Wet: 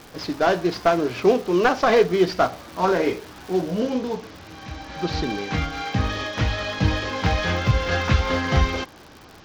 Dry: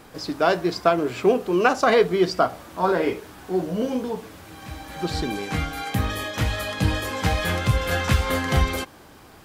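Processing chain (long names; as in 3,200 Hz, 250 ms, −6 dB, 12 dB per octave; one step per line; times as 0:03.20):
variable-slope delta modulation 32 kbit/s
surface crackle 500 per second −36 dBFS, from 0:03.80 80 per second
level +1.5 dB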